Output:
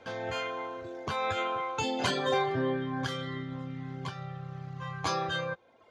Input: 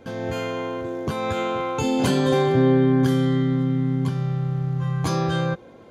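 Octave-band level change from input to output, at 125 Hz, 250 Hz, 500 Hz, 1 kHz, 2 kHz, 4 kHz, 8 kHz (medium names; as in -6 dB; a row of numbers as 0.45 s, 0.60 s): -16.5 dB, -16.0 dB, -10.0 dB, -4.0 dB, -2.5 dB, -2.5 dB, -6.5 dB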